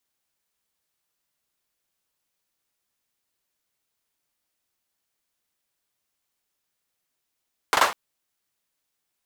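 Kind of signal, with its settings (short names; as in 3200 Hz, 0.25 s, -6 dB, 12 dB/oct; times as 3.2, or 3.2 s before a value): hand clap length 0.20 s, bursts 3, apart 41 ms, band 1000 Hz, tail 0.33 s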